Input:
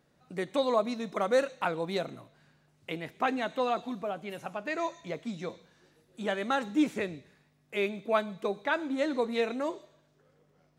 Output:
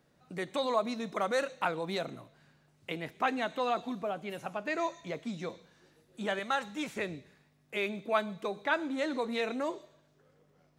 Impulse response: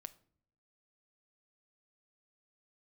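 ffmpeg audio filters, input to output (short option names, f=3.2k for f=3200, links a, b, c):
-filter_complex "[0:a]asettb=1/sr,asplit=3[a][b][c];[a]atrim=end=6.394[d];[b]atrim=start=6.39:end=6.97,asetpts=PTS-STARTPTS,afade=t=in:d=0.004:c=qsin,afade=t=out:st=0.576:d=0.004:c=qsin,equalizer=f=310:w=1.1:g=-12.5[e];[c]atrim=start=6.966[f];[d][e]acrossfade=d=0.004:c1=hsin:c2=qsin[g];[g][f]acrossfade=d=0.004:c1=qsin:c2=hsin,acrossover=split=660|1900[h][i][j];[h]alimiter=level_in=6.5dB:limit=-24dB:level=0:latency=1,volume=-6.5dB[k];[k][i][j]amix=inputs=3:normalize=0"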